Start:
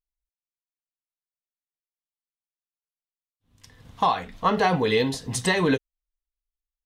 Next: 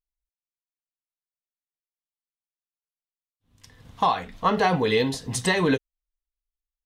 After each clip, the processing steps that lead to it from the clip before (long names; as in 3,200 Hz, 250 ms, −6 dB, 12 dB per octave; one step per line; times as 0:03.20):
no processing that can be heard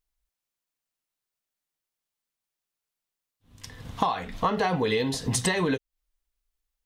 downward compressor 6 to 1, threshold −31 dBFS, peak gain reduction 14 dB
level +8 dB